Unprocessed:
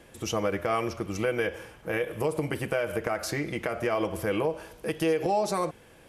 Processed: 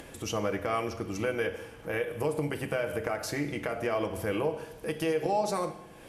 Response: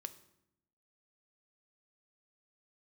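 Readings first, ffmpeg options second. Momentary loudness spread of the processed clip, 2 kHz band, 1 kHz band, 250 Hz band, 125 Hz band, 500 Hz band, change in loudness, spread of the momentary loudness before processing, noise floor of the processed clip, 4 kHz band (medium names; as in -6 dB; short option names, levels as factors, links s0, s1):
6 LU, -2.5 dB, -2.0 dB, -2.5 dB, -2.0 dB, -2.5 dB, -2.5 dB, 6 LU, -49 dBFS, -2.5 dB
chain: -filter_complex "[0:a]acompressor=mode=upward:threshold=0.0158:ratio=2.5[s0];[1:a]atrim=start_sample=2205,asetrate=33516,aresample=44100[s1];[s0][s1]afir=irnorm=-1:irlink=0"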